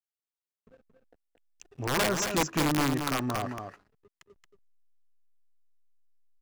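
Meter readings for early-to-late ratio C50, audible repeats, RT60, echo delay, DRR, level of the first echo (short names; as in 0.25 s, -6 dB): none, 1, none, 0.226 s, none, -6.5 dB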